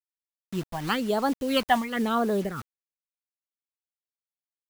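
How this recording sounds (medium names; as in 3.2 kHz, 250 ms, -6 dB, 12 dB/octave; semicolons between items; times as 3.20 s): phasing stages 12, 1 Hz, lowest notch 420–2600 Hz; a quantiser's noise floor 8-bit, dither none; random flutter of the level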